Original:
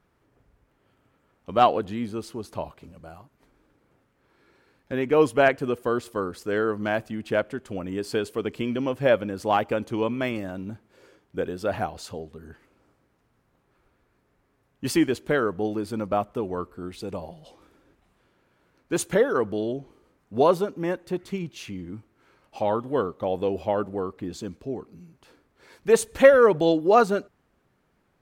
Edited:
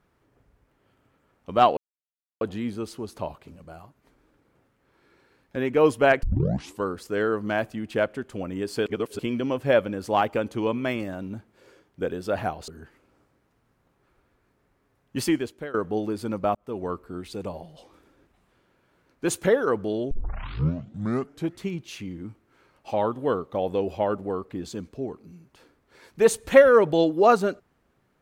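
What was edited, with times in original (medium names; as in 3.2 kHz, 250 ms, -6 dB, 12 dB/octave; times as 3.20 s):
1.77 s: insert silence 0.64 s
5.59 s: tape start 0.60 s
8.22–8.55 s: reverse
12.04–12.36 s: delete
14.85–15.42 s: fade out, to -19 dB
16.23–16.51 s: fade in
19.79 s: tape start 1.48 s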